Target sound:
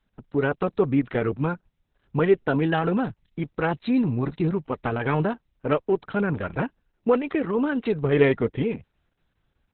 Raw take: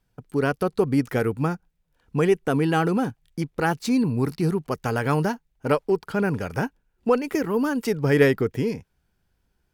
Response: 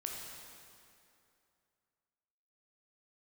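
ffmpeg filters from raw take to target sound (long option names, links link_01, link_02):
-ar 48000 -c:a libopus -b:a 6k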